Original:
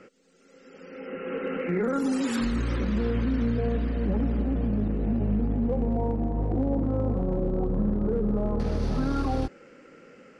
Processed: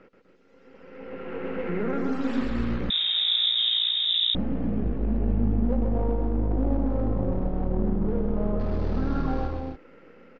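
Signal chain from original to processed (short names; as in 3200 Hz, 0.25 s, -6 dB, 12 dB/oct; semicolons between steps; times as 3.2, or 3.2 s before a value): half-wave gain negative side -7 dB; air absorption 210 m; loudspeakers at several distances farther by 45 m -4 dB, 85 m -8 dB, 98 m -8 dB; 2.9–4.35 inverted band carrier 3700 Hz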